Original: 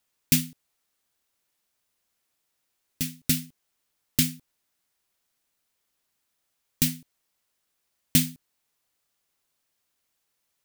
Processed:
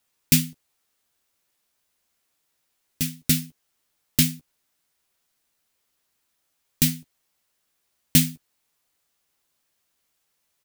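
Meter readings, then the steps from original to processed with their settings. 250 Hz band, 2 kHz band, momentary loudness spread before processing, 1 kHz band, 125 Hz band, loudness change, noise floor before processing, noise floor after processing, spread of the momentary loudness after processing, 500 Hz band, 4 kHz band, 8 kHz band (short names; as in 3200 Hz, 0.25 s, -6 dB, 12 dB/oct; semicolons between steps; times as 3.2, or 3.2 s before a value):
+3.5 dB, +3.0 dB, 10 LU, +3.0 dB, +5.0 dB, +3.5 dB, -78 dBFS, -75 dBFS, 9 LU, +3.0 dB, +3.0 dB, +3.0 dB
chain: doubler 13 ms -8 dB; gain +2.5 dB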